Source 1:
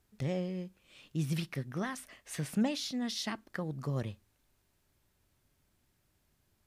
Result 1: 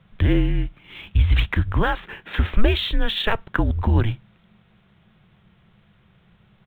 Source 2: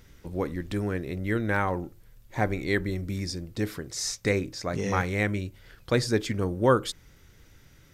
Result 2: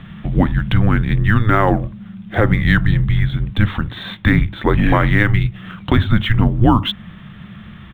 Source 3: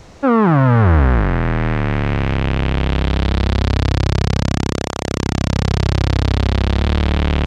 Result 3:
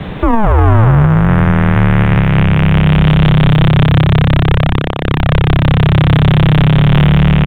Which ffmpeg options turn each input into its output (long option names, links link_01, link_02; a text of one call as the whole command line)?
ffmpeg -i in.wav -filter_complex "[0:a]asplit=2[link_01][link_02];[link_02]acompressor=threshold=-32dB:ratio=5,volume=-2dB[link_03];[link_01][link_03]amix=inputs=2:normalize=0,afreqshift=-220,aresample=8000,aresample=44100,alimiter=level_in=14dB:limit=-1dB:release=50:level=0:latency=1,volume=-1dB" -ar 44100 -c:a adpcm_ima_wav out.wav